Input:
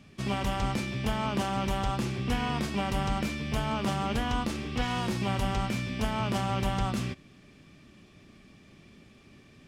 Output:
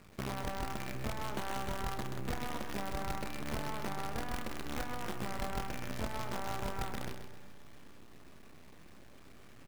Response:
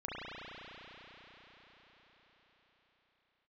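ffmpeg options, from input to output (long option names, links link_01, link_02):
-filter_complex "[0:a]lowpass=frequency=1900:width=0.5412,lowpass=frequency=1900:width=1.3066,equalizer=frequency=170:width_type=o:width=1.5:gain=-5,acompressor=threshold=-40dB:ratio=4,acrusher=bits=7:dc=4:mix=0:aa=0.000001,asplit=2[link_01][link_02];[link_02]adelay=31,volume=-11.5dB[link_03];[link_01][link_03]amix=inputs=2:normalize=0,aecho=1:1:131|262|393|524|655:0.398|0.167|0.0702|0.0295|0.0124,asplit=2[link_04][link_05];[1:a]atrim=start_sample=2205,asetrate=70560,aresample=44100[link_06];[link_05][link_06]afir=irnorm=-1:irlink=0,volume=-20.5dB[link_07];[link_04][link_07]amix=inputs=2:normalize=0,volume=1.5dB"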